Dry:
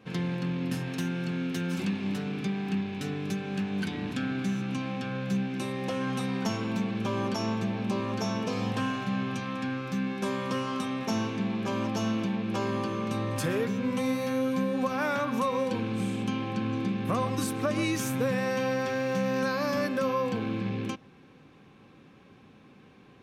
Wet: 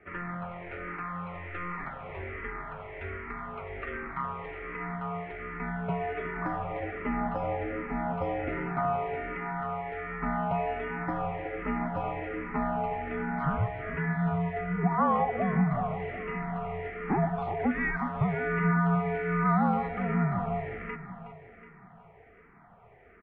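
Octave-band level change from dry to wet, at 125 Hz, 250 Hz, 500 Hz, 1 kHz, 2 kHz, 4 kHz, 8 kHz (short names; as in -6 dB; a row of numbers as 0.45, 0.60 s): +0.5 dB, -4.0 dB, -2.5 dB, +4.0 dB, +1.0 dB, under -15 dB, under -35 dB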